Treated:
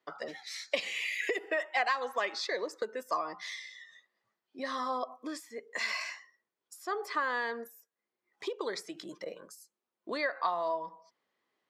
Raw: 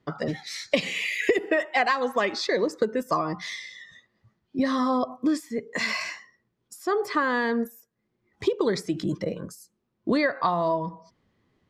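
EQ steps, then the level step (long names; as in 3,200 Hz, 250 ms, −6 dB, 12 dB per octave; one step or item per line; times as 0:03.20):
high-pass filter 560 Hz 12 dB per octave
−6.0 dB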